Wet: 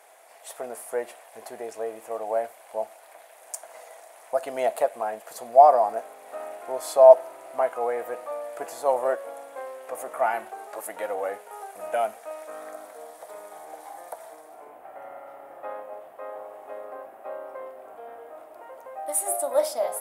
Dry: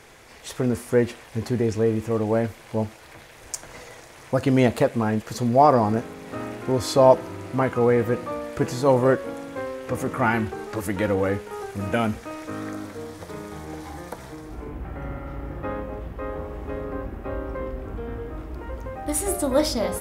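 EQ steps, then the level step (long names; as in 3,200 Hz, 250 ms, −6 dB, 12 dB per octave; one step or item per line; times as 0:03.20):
high-pass with resonance 670 Hz, resonance Q 5.3
high shelf with overshoot 7,400 Hz +8.5 dB, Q 1.5
−9.0 dB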